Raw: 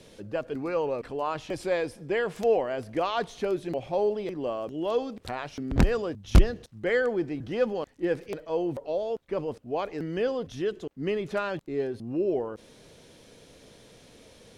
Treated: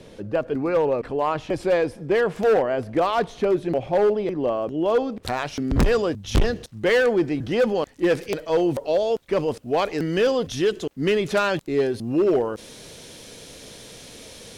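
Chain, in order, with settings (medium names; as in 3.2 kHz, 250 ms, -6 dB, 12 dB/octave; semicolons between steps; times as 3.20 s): treble shelf 2.7 kHz -8.5 dB, from 5.23 s +3.5 dB, from 7.97 s +8.5 dB; overload inside the chain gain 22 dB; trim +8 dB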